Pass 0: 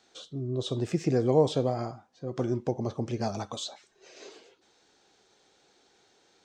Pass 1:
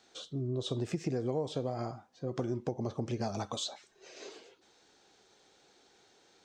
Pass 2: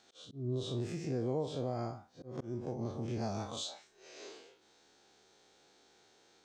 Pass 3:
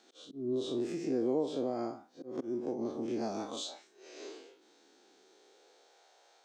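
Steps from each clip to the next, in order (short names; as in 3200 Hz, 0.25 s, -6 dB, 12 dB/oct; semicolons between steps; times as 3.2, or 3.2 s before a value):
compressor 6:1, threshold -30 dBFS, peak gain reduction 13 dB
time blur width 82 ms; auto swell 0.176 s
high-pass sweep 290 Hz -> 640 Hz, 5.2–6.06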